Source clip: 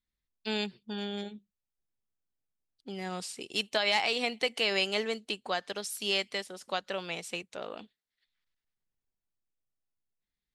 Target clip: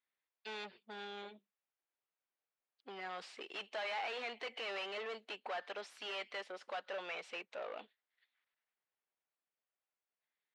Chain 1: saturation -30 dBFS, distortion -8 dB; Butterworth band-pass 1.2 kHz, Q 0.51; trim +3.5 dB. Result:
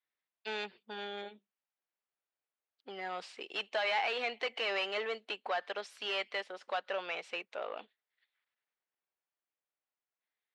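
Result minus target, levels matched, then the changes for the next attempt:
saturation: distortion -5 dB
change: saturation -40 dBFS, distortion -2 dB

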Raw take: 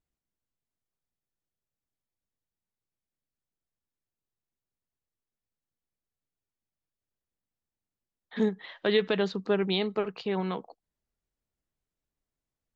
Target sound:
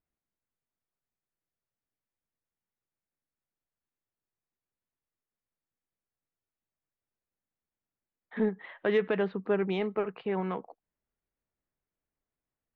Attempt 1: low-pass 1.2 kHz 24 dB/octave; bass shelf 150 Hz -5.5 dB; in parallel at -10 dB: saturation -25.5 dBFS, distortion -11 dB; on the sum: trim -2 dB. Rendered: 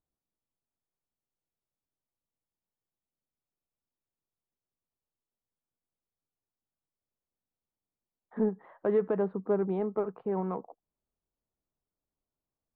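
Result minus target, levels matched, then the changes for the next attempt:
2 kHz band -12.5 dB
change: low-pass 2.4 kHz 24 dB/octave

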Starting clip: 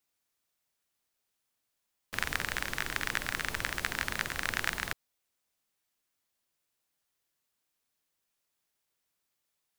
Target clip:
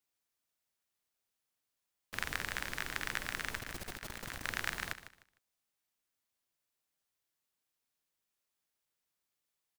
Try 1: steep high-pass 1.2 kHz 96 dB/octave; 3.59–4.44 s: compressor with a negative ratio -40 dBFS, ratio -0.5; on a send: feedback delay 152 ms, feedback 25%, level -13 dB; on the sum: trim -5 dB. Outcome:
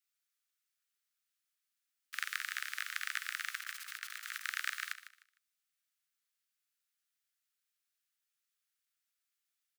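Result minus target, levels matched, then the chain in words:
1 kHz band -2.5 dB
3.59–4.44 s: compressor with a negative ratio -40 dBFS, ratio -0.5; on a send: feedback delay 152 ms, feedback 25%, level -13 dB; on the sum: trim -5 dB

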